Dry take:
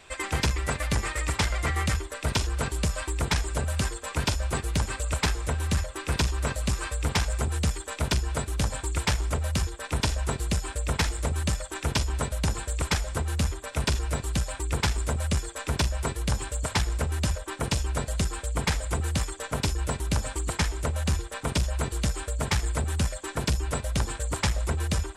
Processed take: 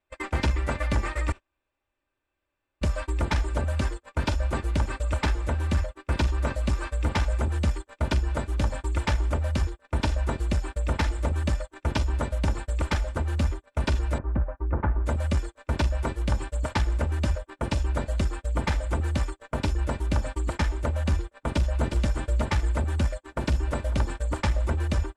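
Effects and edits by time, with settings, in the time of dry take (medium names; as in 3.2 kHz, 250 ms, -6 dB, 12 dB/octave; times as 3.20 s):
1.32–2.81 s: room tone
14.18–15.06 s: low-pass 1.5 kHz 24 dB/octave
21.38–22.05 s: echo throw 360 ms, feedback 20%, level -7 dB
22.72–23.44 s: echo throw 550 ms, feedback 60%, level -15.5 dB
whole clip: gate -32 dBFS, range -30 dB; low-pass 1.6 kHz 6 dB/octave; comb 3.4 ms, depth 41%; trim +1.5 dB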